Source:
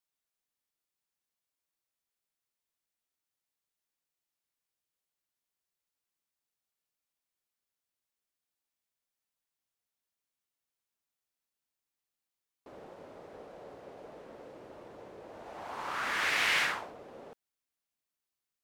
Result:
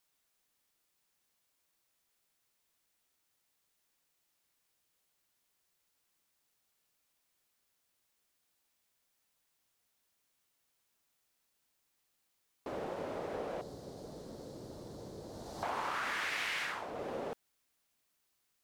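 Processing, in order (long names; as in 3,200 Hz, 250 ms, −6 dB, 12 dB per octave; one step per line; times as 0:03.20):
0:13.61–0:15.63: drawn EQ curve 150 Hz 0 dB, 580 Hz −12 dB, 2,600 Hz −20 dB, 4,200 Hz +1 dB
downward compressor 16 to 1, threshold −44 dBFS, peak gain reduction 20 dB
level +10.5 dB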